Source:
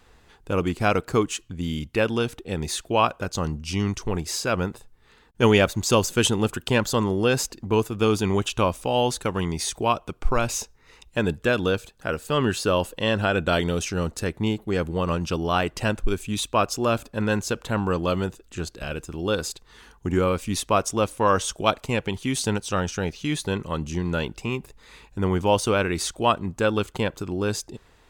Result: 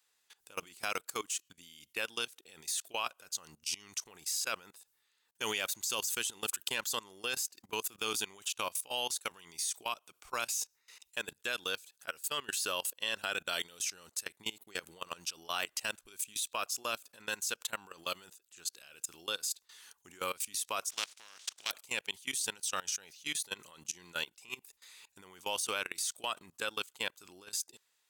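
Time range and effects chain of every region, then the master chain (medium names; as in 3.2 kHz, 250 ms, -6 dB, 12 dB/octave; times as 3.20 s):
20.89–21.70 s: spectral contrast reduction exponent 0.32 + level held to a coarse grid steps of 14 dB + distance through air 120 m
whole clip: differentiator; level held to a coarse grid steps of 21 dB; trim +7.5 dB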